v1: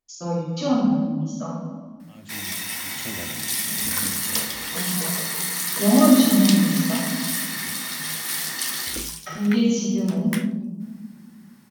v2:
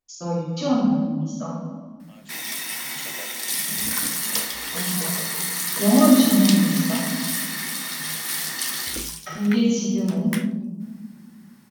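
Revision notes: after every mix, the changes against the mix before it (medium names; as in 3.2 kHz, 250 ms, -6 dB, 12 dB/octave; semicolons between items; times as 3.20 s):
second voice: add high-pass 450 Hz 24 dB/octave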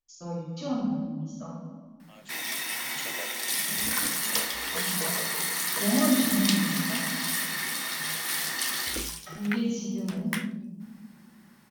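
first voice -10.0 dB; background: add tone controls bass -8 dB, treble -4 dB; master: add bass shelf 68 Hz +11.5 dB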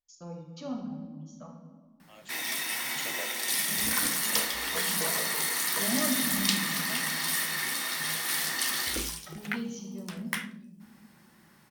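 first voice: send -9.5 dB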